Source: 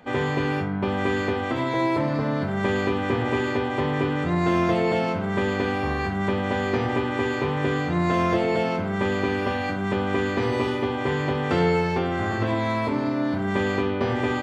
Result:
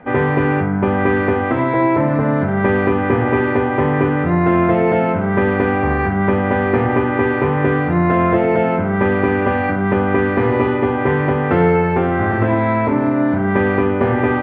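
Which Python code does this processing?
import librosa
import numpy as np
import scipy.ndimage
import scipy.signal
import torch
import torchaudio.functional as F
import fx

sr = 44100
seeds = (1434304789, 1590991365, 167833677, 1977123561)

p1 = scipy.signal.sosfilt(scipy.signal.butter(4, 2200.0, 'lowpass', fs=sr, output='sos'), x)
p2 = fx.notch(p1, sr, hz=1100.0, q=25.0)
p3 = fx.rider(p2, sr, range_db=10, speed_s=0.5)
p4 = p2 + (p3 * librosa.db_to_amplitude(-1.5))
y = p4 * librosa.db_to_amplitude(3.0)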